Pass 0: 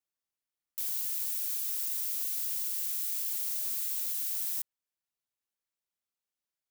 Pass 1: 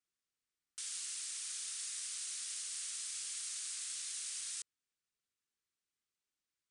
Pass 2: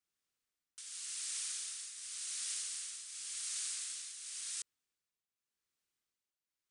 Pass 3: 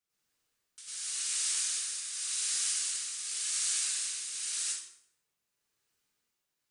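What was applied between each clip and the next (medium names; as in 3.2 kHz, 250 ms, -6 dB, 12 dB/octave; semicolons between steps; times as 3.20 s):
steep low-pass 9.7 kHz 96 dB/octave; high-order bell 720 Hz -9.5 dB 1.1 oct; trim +1 dB
tremolo triangle 0.9 Hz, depth 70%; trim +3.5 dB
plate-style reverb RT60 0.68 s, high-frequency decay 0.8×, pre-delay 85 ms, DRR -9 dB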